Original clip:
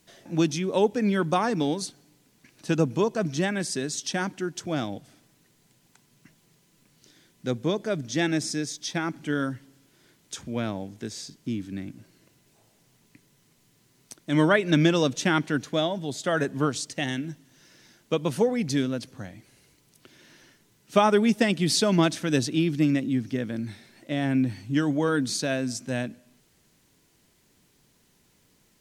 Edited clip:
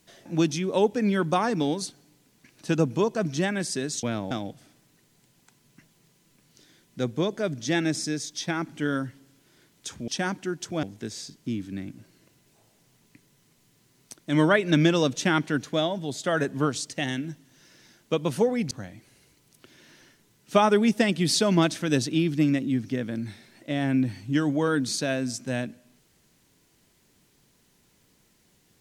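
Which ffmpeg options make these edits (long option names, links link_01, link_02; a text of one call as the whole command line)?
ffmpeg -i in.wav -filter_complex "[0:a]asplit=6[link_01][link_02][link_03][link_04][link_05][link_06];[link_01]atrim=end=4.032[link_07];[link_02]atrim=start=10.548:end=10.832[link_08];[link_03]atrim=start=4.778:end=10.552[link_09];[link_04]atrim=start=4.028:end=4.782[link_10];[link_05]atrim=start=10.828:end=18.712[link_11];[link_06]atrim=start=19.118[link_12];[link_07][link_08]acrossfade=duration=0.004:curve1=hsin:curve2=hsin[link_13];[link_13][link_09]acrossfade=duration=0.004:curve1=hsin:curve2=hsin[link_14];[link_14][link_10]acrossfade=duration=0.004:curve1=hsin:curve2=hsin[link_15];[link_15][link_11]acrossfade=duration=0.004:curve1=hsin:curve2=hsin[link_16];[link_16][link_12]acrossfade=duration=0.004:curve1=hsin:curve2=hsin" out.wav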